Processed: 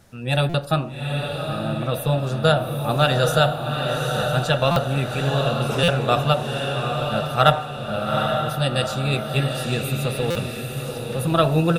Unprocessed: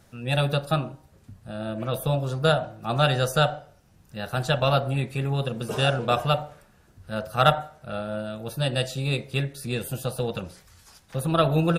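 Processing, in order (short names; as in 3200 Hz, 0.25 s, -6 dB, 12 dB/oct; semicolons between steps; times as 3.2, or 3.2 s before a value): diffused feedback echo 0.827 s, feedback 45%, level -4 dB; stuck buffer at 0.49/4.71/5.83/10.3, samples 256, times 8; gain +3 dB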